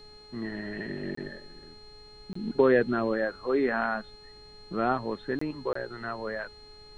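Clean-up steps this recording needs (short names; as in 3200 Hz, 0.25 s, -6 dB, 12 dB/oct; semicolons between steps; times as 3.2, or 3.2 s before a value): de-hum 421.6 Hz, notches 24; notch 4200 Hz, Q 30; interpolate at 1.15/2.33/5.39/5.73, 24 ms; noise print and reduce 24 dB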